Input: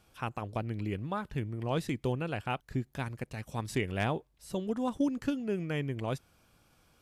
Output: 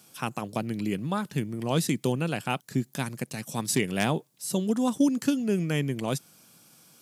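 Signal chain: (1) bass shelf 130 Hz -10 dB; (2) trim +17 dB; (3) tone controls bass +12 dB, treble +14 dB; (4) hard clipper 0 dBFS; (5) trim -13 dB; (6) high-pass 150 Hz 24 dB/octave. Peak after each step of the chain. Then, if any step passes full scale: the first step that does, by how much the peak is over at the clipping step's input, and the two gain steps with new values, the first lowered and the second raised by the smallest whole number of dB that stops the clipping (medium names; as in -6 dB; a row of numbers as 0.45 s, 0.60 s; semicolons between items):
-17.5 dBFS, -0.5 dBFS, +4.0 dBFS, 0.0 dBFS, -13.0 dBFS, -9.0 dBFS; step 3, 4.0 dB; step 2 +13 dB, step 5 -9 dB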